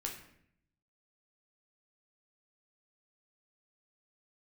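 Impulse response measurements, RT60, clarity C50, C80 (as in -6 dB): 0.70 s, 7.0 dB, 9.5 dB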